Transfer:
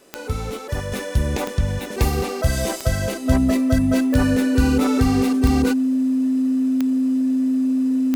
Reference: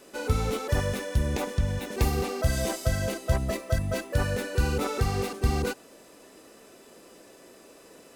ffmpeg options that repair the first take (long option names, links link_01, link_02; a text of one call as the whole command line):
ffmpeg -i in.wav -af "adeclick=threshold=4,bandreject=frequency=260:width=30,asetnsamples=nb_out_samples=441:pad=0,asendcmd='0.92 volume volume -5.5dB',volume=0dB" out.wav